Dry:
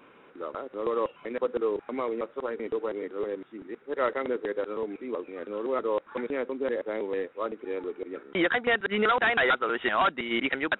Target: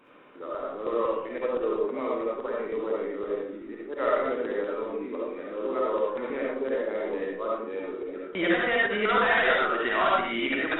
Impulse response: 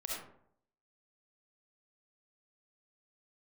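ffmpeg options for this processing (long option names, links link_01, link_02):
-filter_complex "[1:a]atrim=start_sample=2205,afade=type=out:start_time=0.32:duration=0.01,atrim=end_sample=14553,asetrate=41895,aresample=44100[link_01];[0:a][link_01]afir=irnorm=-1:irlink=0"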